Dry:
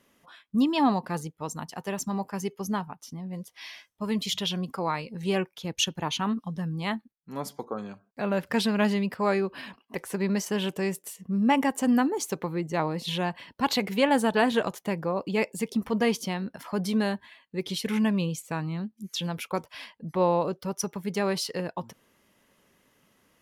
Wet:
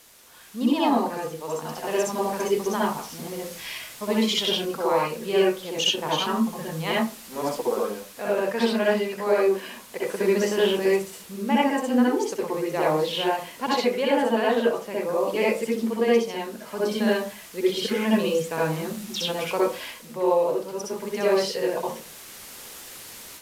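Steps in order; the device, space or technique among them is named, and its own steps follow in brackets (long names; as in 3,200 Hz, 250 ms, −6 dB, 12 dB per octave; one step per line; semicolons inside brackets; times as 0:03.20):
filmed off a television (band-pass filter 290–7,200 Hz; parametric band 490 Hz +8 dB 0.26 octaves; convolution reverb RT60 0.35 s, pre-delay 58 ms, DRR −5.5 dB; white noise bed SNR 21 dB; automatic gain control; level −8.5 dB; AAC 96 kbit/s 32,000 Hz)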